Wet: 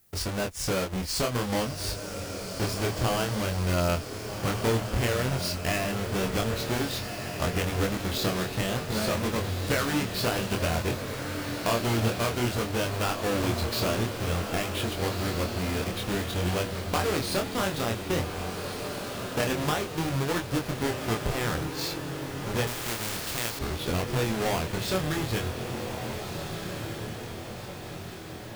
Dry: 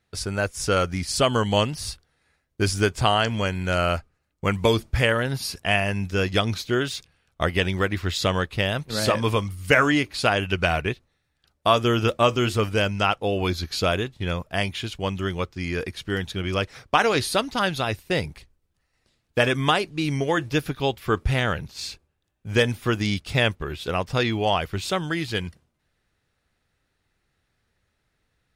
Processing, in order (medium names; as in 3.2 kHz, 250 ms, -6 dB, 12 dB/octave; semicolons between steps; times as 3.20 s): square wave that keeps the level; compression 3:1, threshold -25 dBFS, peak gain reduction 12 dB; on a send: echo that smears into a reverb 1587 ms, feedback 56%, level -6 dB; on the sum: added noise violet -59 dBFS; chorus 0.54 Hz, depth 4.2 ms; 22.67–23.59 s: spectrum-flattening compressor 2:1